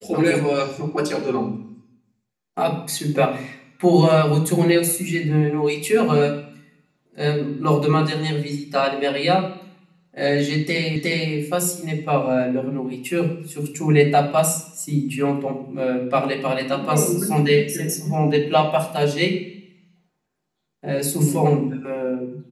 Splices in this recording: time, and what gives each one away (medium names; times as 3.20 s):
10.96 s: repeat of the last 0.36 s